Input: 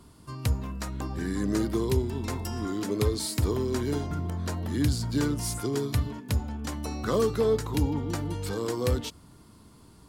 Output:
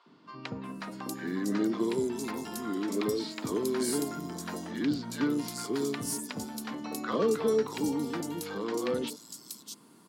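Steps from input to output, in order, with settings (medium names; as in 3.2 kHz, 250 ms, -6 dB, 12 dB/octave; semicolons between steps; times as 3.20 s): high-pass 190 Hz 24 dB/octave; three bands offset in time mids, lows, highs 60/640 ms, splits 620/4400 Hz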